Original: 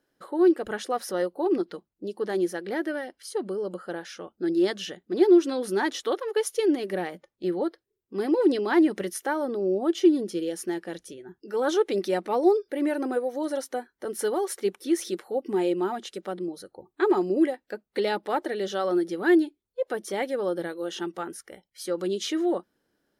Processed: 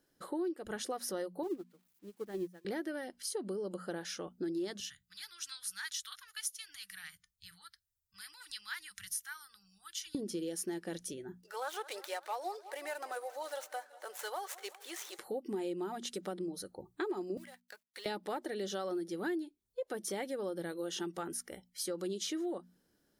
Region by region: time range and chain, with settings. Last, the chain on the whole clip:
1.43–2.65 switching spikes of -26 dBFS + tone controls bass +5 dB, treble -14 dB + upward expander 2.5:1, over -37 dBFS
4.8–10.15 elliptic band-stop 100–1400 Hz, stop band 50 dB + bell 1300 Hz -6.5 dB 2.9 oct
11.41–15.19 median filter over 9 samples + HPF 690 Hz 24 dB/oct + warbling echo 0.187 s, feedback 66%, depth 75 cents, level -19.5 dB
17.37–18.06 G.711 law mismatch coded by A + HPF 1200 Hz + compressor 5:1, threshold -43 dBFS
whole clip: tone controls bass +7 dB, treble +8 dB; notches 60/120/180/240 Hz; compressor 5:1, threshold -32 dBFS; gain -3.5 dB

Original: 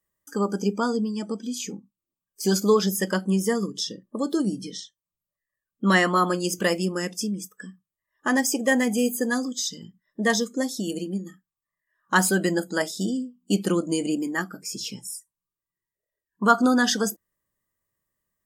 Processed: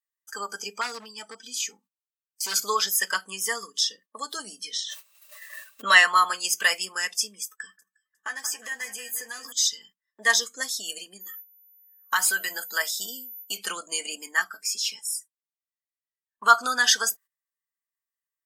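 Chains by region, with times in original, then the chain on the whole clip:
0.81–2.54 notch comb 550 Hz + overloaded stage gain 22 dB
4.73–6.04 small resonant body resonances 600/2700/3900 Hz, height 14 dB, ringing for 60 ms + backwards sustainer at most 24 dB/s
7.43–9.52 compressor 8:1, threshold -30 dBFS + doubler 14 ms -9.5 dB + echo with dull and thin repeats by turns 0.179 s, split 1600 Hz, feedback 59%, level -9.5 dB
11.2–13.56 compressor 4:1, threshold -21 dBFS + whine 14000 Hz -45 dBFS
whole clip: gate -46 dBFS, range -16 dB; Chebyshev high-pass 1500 Hz, order 2; comb 4.5 ms, depth 46%; gain +5.5 dB

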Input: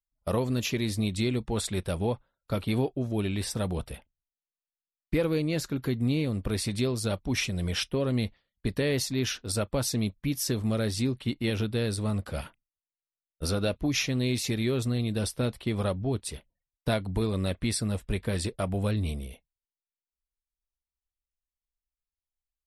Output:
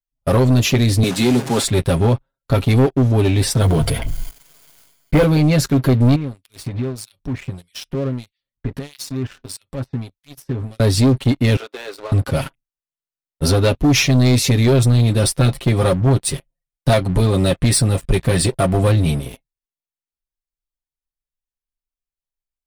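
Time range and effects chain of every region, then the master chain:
1.03–1.64 delta modulation 64 kbps, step -34.5 dBFS + HPF 150 Hz 24 dB/oct
3.6–5.24 ripple EQ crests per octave 1.8, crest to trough 9 dB + short-mantissa float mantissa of 4-bit + sustainer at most 25 dB/s
6.15–10.8 compressor, threshold -37 dBFS + harmonic tremolo 1.6 Hz, depth 100%, crossover 2500 Hz
11.56–12.12 Bessel high-pass 650 Hz, order 8 + tape spacing loss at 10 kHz 22 dB + compressor 1.5:1, threshold -43 dBFS
14.67–19.1 bell 9000 Hz +5 dB 0.21 oct + comb 5.8 ms, depth 39%
whole clip: low shelf 380 Hz +5.5 dB; comb 7.4 ms, depth 74%; sample leveller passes 3

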